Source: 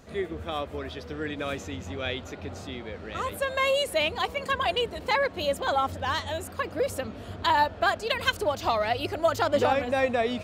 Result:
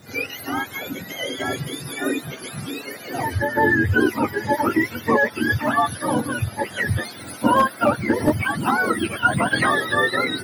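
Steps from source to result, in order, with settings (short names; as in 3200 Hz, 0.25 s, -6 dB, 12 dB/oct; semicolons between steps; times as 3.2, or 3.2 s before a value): spectrum mirrored in octaves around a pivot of 970 Hz; 7.51–8.79 hard clip -17 dBFS, distortion -26 dB; gain +8 dB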